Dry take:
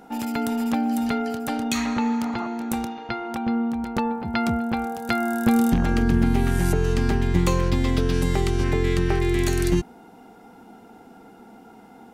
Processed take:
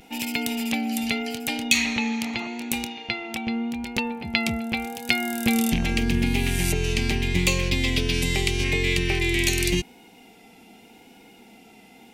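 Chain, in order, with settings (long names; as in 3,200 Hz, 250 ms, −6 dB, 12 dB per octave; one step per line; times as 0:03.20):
pitch vibrato 0.83 Hz 37 cents
high shelf with overshoot 1,800 Hz +9.5 dB, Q 3
level −3.5 dB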